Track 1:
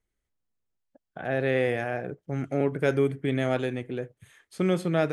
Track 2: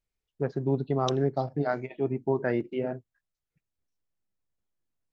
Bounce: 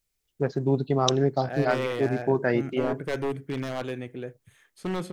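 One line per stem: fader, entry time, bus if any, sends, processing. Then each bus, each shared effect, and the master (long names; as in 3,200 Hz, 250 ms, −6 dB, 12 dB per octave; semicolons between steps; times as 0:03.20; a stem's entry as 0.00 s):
−3.5 dB, 0.25 s, no send, wavefolder on the positive side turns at −19.5 dBFS
+3.0 dB, 0.00 s, no send, high-shelf EQ 3,600 Hz +11.5 dB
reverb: not used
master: no processing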